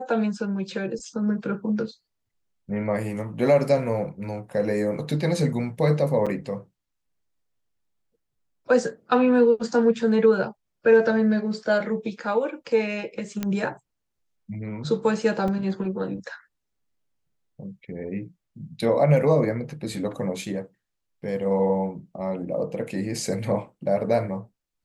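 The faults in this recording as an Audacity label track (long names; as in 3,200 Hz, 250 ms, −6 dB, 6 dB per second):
6.260000	6.270000	drop-out 6.1 ms
13.430000	13.430000	click −13 dBFS
15.480000	15.480000	drop-out 2.7 ms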